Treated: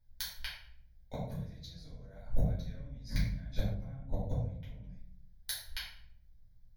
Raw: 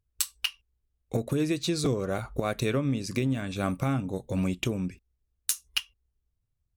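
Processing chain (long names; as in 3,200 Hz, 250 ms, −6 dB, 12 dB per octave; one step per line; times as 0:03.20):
sub-octave generator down 2 octaves, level +1 dB
in parallel at +1 dB: brickwall limiter −20 dBFS, peak gain reduction 10.5 dB
on the sum: gate with flip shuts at −15 dBFS, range −31 dB
phaser with its sweep stopped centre 1,800 Hz, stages 8
rectangular room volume 100 cubic metres, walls mixed, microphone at 2.7 metres
0:03.74–0:04.84: one half of a high-frequency compander decoder only
level −7.5 dB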